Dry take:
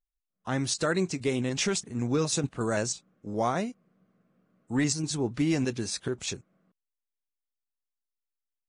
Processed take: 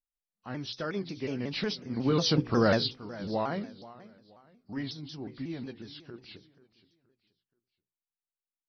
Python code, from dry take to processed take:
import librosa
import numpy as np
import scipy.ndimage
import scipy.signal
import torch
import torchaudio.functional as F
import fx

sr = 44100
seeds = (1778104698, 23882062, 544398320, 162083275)

p1 = fx.freq_compress(x, sr, knee_hz=2000.0, ratio=1.5)
p2 = fx.doppler_pass(p1, sr, speed_mps=9, closest_m=2.9, pass_at_s=2.55)
p3 = fx.peak_eq(p2, sr, hz=220.0, db=2.5, octaves=0.77)
p4 = fx.rider(p3, sr, range_db=4, speed_s=2.0)
p5 = p3 + (p4 * librosa.db_to_amplitude(-2.0))
p6 = fx.hum_notches(p5, sr, base_hz=60, count=8)
p7 = p6 + fx.echo_feedback(p6, sr, ms=478, feedback_pct=34, wet_db=-18, dry=0)
y = fx.vibrato_shape(p7, sr, shape='saw_down', rate_hz=5.5, depth_cents=160.0)